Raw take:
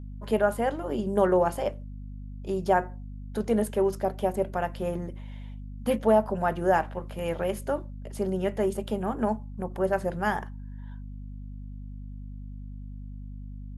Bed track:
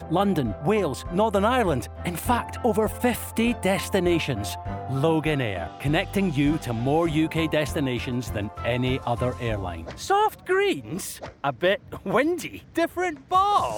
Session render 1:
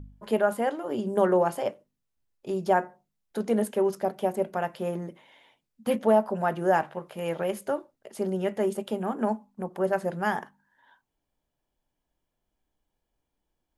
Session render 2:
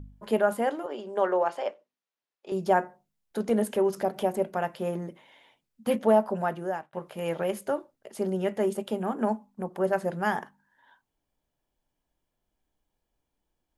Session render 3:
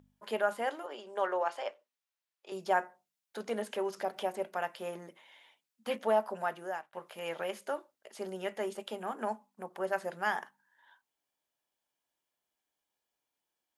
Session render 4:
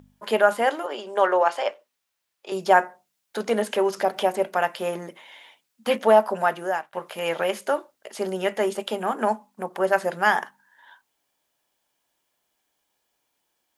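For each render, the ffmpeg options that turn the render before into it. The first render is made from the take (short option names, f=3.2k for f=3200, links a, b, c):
-af "bandreject=f=50:t=h:w=4,bandreject=f=100:t=h:w=4,bandreject=f=150:t=h:w=4,bandreject=f=200:t=h:w=4,bandreject=f=250:t=h:w=4"
-filter_complex "[0:a]asettb=1/sr,asplit=3[a][b][c];[a]atrim=end=0.864[d];[b]atrim=start=0.86:end=2.52,asetpts=PTS-STARTPTS,afade=t=in:d=0.004:c=qsin,afade=t=out:st=1.656:d=0.004:c=qsin,highpass=490,lowpass=4.9k[e];[c]atrim=start=2.516[f];[d][e]acrossfade=d=0.004:c1=hsin:c2=qsin[g];[g][f]acrossfade=d=0.004:c1=qsin:c2=hsin,asettb=1/sr,asplit=3[h][i][j];[h]atrim=end=3.494[k];[i]atrim=start=3.49:end=4.39,asetpts=PTS-STARTPTS,afade=t=in:d=0.004:c=qsin,afade=t=out:st=0.896:d=0.004:c=qsin,acompressor=mode=upward:threshold=-28dB:ratio=2.5:attack=3.2:release=140:knee=2.83:detection=peak[l];[j]atrim=start=4.386[m];[k][l]acrossfade=d=0.004:c1=hsin:c2=qsin[n];[n][m]acrossfade=d=0.004:c1=qsin:c2=hsin,asplit=2[o][p];[o]atrim=end=6.93,asetpts=PTS-STARTPTS,afade=t=out:st=6.34:d=0.59[q];[p]atrim=start=6.93,asetpts=PTS-STARTPTS,afade=t=in:d=0.004:c=hsin[r];[q][r]concat=n=2:v=0:a=1"
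-filter_complex "[0:a]acrossover=split=6600[a][b];[b]acompressor=threshold=-57dB:ratio=4:attack=1:release=60[c];[a][c]amix=inputs=2:normalize=0,highpass=f=1.2k:p=1"
-af "volume=12dB"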